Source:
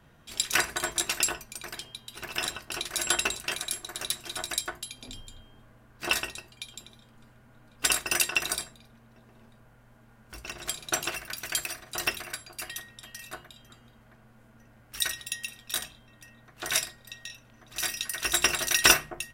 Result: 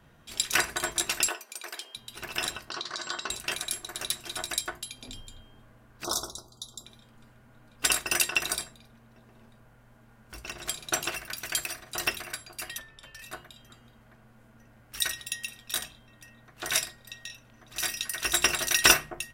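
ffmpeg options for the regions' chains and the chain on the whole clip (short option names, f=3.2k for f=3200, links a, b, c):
-filter_complex "[0:a]asettb=1/sr,asplit=3[a][b][c];[a]atrim=end=1.284[d];[b]atrim=start=1.28:end=1.96,asetpts=PTS-STARTPTS,afade=t=in:d=0.004:c=qsin,afade=t=out:st=0.676:d=0.004:c=qsin,highpass=f=350:w=0.5412,highpass=f=350:w=1.3066,acompressor=mode=upward:threshold=-48dB:ratio=2.5:attack=3.2:release=140:knee=2.83:detection=peak,acrusher=bits=9:mode=log:mix=0:aa=0.000001[e];[c]atrim=start=1.956[f];[d][e]acrossfade=d=0.004:c1=hsin:c2=qsin[g];[g][f]acrossfade=d=0.004:c1=qsin:c2=hsin,asettb=1/sr,asplit=3[h][i][j];[h]atrim=end=2.704[k];[i]atrim=start=2.7:end=3.3,asetpts=PTS-STARTPTS,afade=t=in:d=0.004:c=qsin,afade=t=out:st=0.596:d=0.004:c=qsin,acompressor=threshold=-33dB:ratio=3:attack=3.2:release=140:knee=1:detection=peak,highpass=140,equalizer=f=1.1k:t=q:w=4:g=9,equalizer=f=1.5k:t=q:w=4:g=3,equalizer=f=2.5k:t=q:w=4:g=-9,equalizer=f=4.4k:t=q:w=4:g=9,lowpass=f=6.6k:w=0.5412,lowpass=f=6.6k:w=1.3066[l];[j]atrim=start=3.296[m];[k][l]acrossfade=d=0.004:c1=hsin:c2=qsin[n];[n][m]acrossfade=d=0.004:c1=qsin:c2=hsin,asettb=1/sr,asplit=3[o][p][q];[o]atrim=end=6.044[r];[p]atrim=start=6.04:end=6.86,asetpts=PTS-STARTPTS,afade=t=in:d=0.004:c=qsin,afade=t=out:st=0.816:d=0.004:c=qsin,asuperstop=centerf=2200:order=20:qfactor=1.1,equalizer=f=6.2k:t=o:w=0.25:g=8.5,bandreject=f=52.21:t=h:w=4,bandreject=f=104.42:t=h:w=4,bandreject=f=156.63:t=h:w=4,bandreject=f=208.84:t=h:w=4,bandreject=f=261.05:t=h:w=4,bandreject=f=313.26:t=h:w=4,bandreject=f=365.47:t=h:w=4,bandreject=f=417.68:t=h:w=4,bandreject=f=469.89:t=h:w=4,bandreject=f=522.1:t=h:w=4,bandreject=f=574.31:t=h:w=4,bandreject=f=626.52:t=h:w=4,bandreject=f=678.73:t=h:w=4,bandreject=f=730.94:t=h:w=4,bandreject=f=783.15:t=h:w=4,bandreject=f=835.36:t=h:w=4,bandreject=f=887.57:t=h:w=4,bandreject=f=939.78:t=h:w=4,bandreject=f=991.99:t=h:w=4,bandreject=f=1.0442k:t=h:w=4,bandreject=f=1.09641k:t=h:w=4,bandreject=f=1.14862k:t=h:w=4[s];[q]atrim=start=6.856[t];[r][s]acrossfade=d=0.004:c1=hsin:c2=qsin[u];[u][t]acrossfade=d=0.004:c1=qsin:c2=hsin,asettb=1/sr,asplit=3[v][w][x];[v]atrim=end=12.784[y];[w]atrim=start=12.78:end=13.22,asetpts=PTS-STARTPTS,afade=t=in:d=0.004:c=qsin,afade=t=out:st=0.436:d=0.004:c=qsin,lowpass=f=3.4k:p=1,afreqshift=-95[z];[x]atrim=start=13.216[aa];[y][z]acrossfade=d=0.004:c1=hsin:c2=qsin[ab];[ab][aa]acrossfade=d=0.004:c1=qsin:c2=hsin"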